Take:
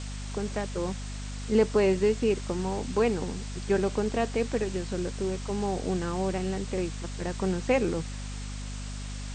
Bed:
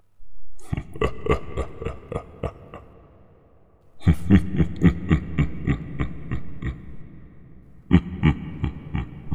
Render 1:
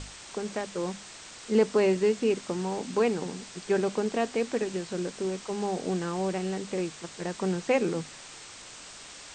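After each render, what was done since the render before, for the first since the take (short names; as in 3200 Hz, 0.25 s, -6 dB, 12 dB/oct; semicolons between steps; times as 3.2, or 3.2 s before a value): notches 50/100/150/200/250 Hz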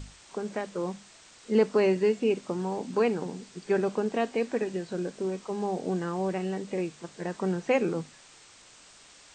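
noise print and reduce 8 dB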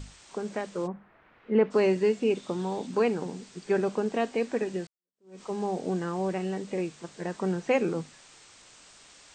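0.86–1.7 LPF 1500 Hz -> 2900 Hz 24 dB/oct; 2.35–2.87 bell 3600 Hz +10.5 dB 0.23 oct; 4.87–5.41 fade in exponential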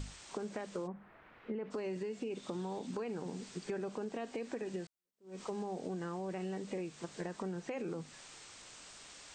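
limiter -23 dBFS, peak gain reduction 11 dB; compressor, threshold -37 dBFS, peak gain reduction 10 dB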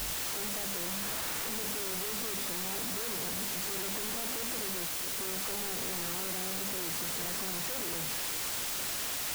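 infinite clipping; requantised 6-bit, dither triangular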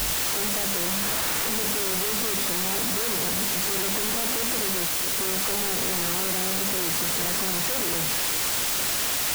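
gain +9.5 dB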